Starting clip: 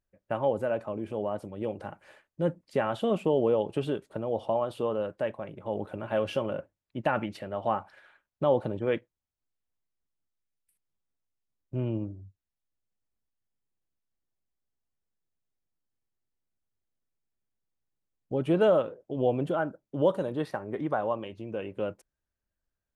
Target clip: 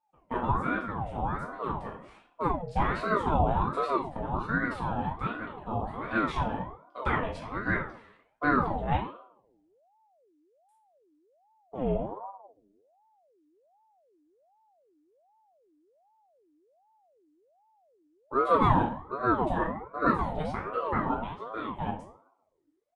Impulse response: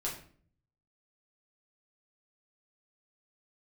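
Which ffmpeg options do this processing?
-filter_complex "[0:a]aresample=22050,aresample=44100[link_01];[1:a]atrim=start_sample=2205[link_02];[link_01][link_02]afir=irnorm=-1:irlink=0,aeval=exprs='val(0)*sin(2*PI*590*n/s+590*0.5/1.3*sin(2*PI*1.3*n/s))':channel_layout=same"

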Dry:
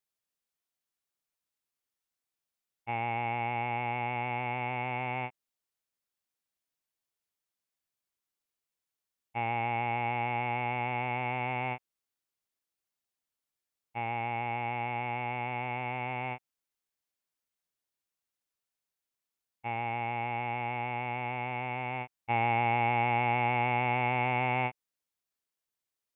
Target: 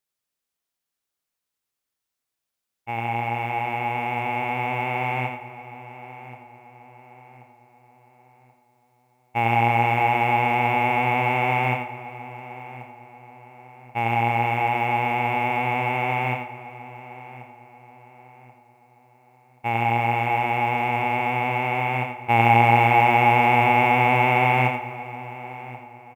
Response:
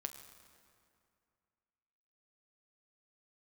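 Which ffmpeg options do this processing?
-filter_complex "[0:a]asplit=2[link_01][link_02];[link_02]adelay=1082,lowpass=frequency=2500:poles=1,volume=-16dB,asplit=2[link_03][link_04];[link_04]adelay=1082,lowpass=frequency=2500:poles=1,volume=0.42,asplit=2[link_05][link_06];[link_06]adelay=1082,lowpass=frequency=2500:poles=1,volume=0.42,asplit=2[link_07][link_08];[link_08]adelay=1082,lowpass=frequency=2500:poles=1,volume=0.42[link_09];[link_01][link_03][link_05][link_07][link_09]amix=inputs=5:normalize=0,dynaudnorm=framelen=470:gausssize=21:maxgain=7dB,acrusher=bits=9:mode=log:mix=0:aa=0.000001,asplit=2[link_10][link_11];[1:a]atrim=start_sample=2205,adelay=86[link_12];[link_11][link_12]afir=irnorm=-1:irlink=0,volume=-3.5dB[link_13];[link_10][link_13]amix=inputs=2:normalize=0,volume=3.5dB"

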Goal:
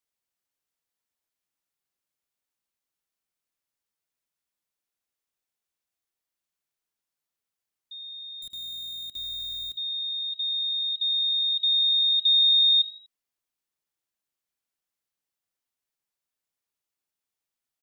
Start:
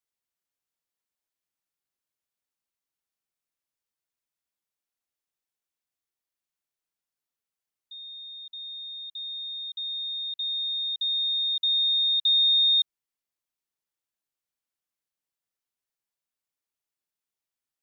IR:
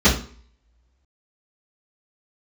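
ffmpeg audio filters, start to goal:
-filter_complex "[0:a]asettb=1/sr,asplit=3[link_01][link_02][link_03];[link_01]atrim=end=8.424[link_04];[link_02]atrim=start=8.42:end=9.75,asetpts=PTS-STARTPTS,afade=type=in:duration=0.004:curve=qsin,afade=type=out:start_time=1.326:duration=0.004:curve=qsin,acrusher=bits=8:dc=4:mix=0:aa=0.000001[link_05];[link_03]atrim=start=9.746[link_06];[link_04][link_05]acrossfade=duration=0.004:curve1=hsin:curve2=qsin[link_07];[link_07][link_06]acrossfade=duration=0.004:curve1=qsin:curve2=hsin,asplit=4[link_08][link_09][link_10][link_11];[link_09]adelay=81,afreqshift=50,volume=-18dB[link_12];[link_10]adelay=162,afreqshift=100,volume=-25.7dB[link_13];[link_11]adelay=243,afreqshift=150,volume=-33.5dB[link_14];[link_08][link_12][link_13][link_14]amix=inputs=4:normalize=0,volume=1.5dB"

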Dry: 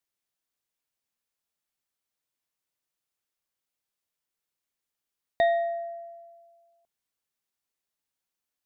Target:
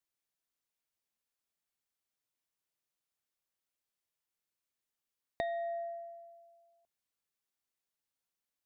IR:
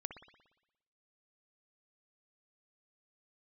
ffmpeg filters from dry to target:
-af "acompressor=threshold=-30dB:ratio=6,volume=-4dB"

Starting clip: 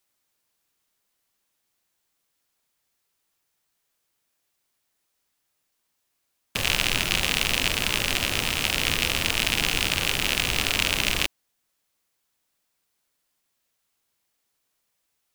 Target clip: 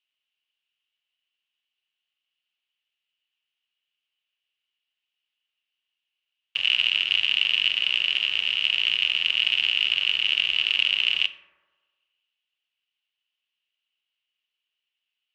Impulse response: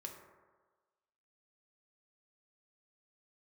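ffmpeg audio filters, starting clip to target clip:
-filter_complex "[0:a]bandpass=frequency=2900:width_type=q:width=9.9:csg=0,aemphasis=mode=reproduction:type=bsi,acontrast=72,asplit=2[link_01][link_02];[1:a]atrim=start_sample=2205[link_03];[link_02][link_03]afir=irnorm=-1:irlink=0,volume=3.5dB[link_04];[link_01][link_04]amix=inputs=2:normalize=0"

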